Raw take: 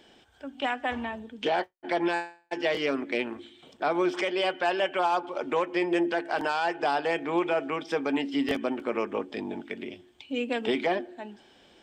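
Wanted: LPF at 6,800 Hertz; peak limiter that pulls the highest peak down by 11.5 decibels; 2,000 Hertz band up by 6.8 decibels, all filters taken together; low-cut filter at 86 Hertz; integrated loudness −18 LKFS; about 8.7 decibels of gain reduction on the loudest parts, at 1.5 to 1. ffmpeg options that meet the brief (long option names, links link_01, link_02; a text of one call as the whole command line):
ffmpeg -i in.wav -af "highpass=86,lowpass=6800,equalizer=frequency=2000:width_type=o:gain=8.5,acompressor=threshold=-45dB:ratio=1.5,volume=21.5dB,alimiter=limit=-7.5dB:level=0:latency=1" out.wav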